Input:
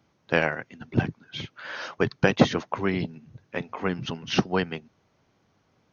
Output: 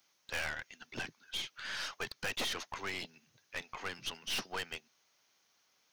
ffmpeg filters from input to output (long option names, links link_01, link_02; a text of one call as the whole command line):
ffmpeg -i in.wav -filter_complex "[0:a]aderivative,acrossover=split=4700[link_01][link_02];[link_02]acompressor=threshold=-53dB:ratio=4:attack=1:release=60[link_03];[link_01][link_03]amix=inputs=2:normalize=0,aeval=exprs='(tanh(141*val(0)+0.5)-tanh(0.5))/141':channel_layout=same,volume=10.5dB" out.wav